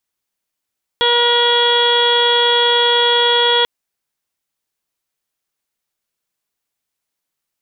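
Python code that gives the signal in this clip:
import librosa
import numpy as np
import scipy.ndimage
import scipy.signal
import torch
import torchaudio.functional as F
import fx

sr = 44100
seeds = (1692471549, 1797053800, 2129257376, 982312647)

y = fx.additive_steady(sr, length_s=2.64, hz=478.0, level_db=-17.0, upper_db=(-1, -5.5, -6, -15, -10, 3.0, -15.5, -19.0))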